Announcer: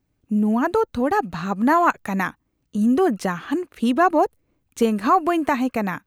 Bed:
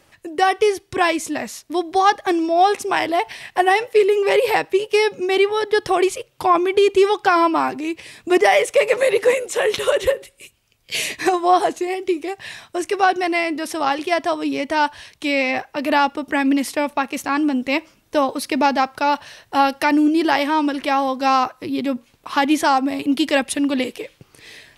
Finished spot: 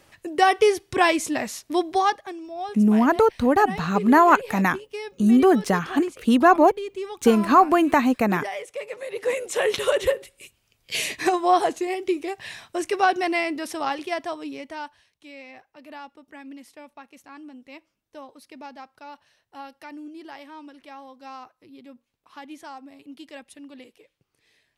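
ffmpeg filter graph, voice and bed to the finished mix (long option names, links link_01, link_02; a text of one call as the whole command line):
ffmpeg -i stem1.wav -i stem2.wav -filter_complex "[0:a]adelay=2450,volume=2dB[link_01];[1:a]volume=13dB,afade=type=out:start_time=1.8:duration=0.51:silence=0.149624,afade=type=in:start_time=9.1:duration=0.43:silence=0.199526,afade=type=out:start_time=13.27:duration=1.78:silence=0.1[link_02];[link_01][link_02]amix=inputs=2:normalize=0" out.wav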